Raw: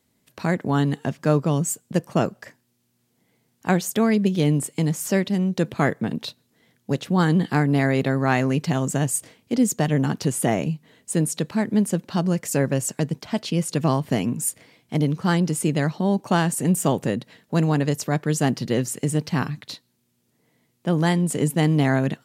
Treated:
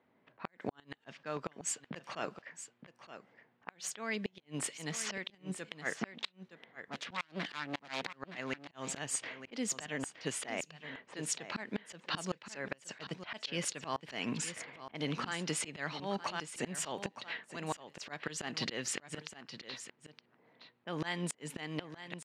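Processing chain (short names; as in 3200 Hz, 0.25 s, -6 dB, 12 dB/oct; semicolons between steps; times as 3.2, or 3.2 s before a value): 5.96–8.07 self-modulated delay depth 0.86 ms; LPF 2900 Hz 12 dB/oct; low-pass opened by the level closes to 900 Hz, open at -20 dBFS; HPF 550 Hz 6 dB/oct; tilt shelf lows -8 dB, about 1300 Hz; compressor 2:1, threshold -39 dBFS, peak gain reduction 12 dB; auto swell 0.246 s; vocal rider within 4 dB 0.5 s; flipped gate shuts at -29 dBFS, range -32 dB; echo 0.918 s -11.5 dB; gain +7.5 dB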